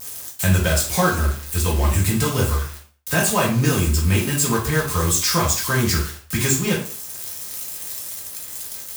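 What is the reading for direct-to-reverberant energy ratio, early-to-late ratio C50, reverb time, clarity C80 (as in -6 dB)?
-4.0 dB, 7.0 dB, 0.45 s, 11.5 dB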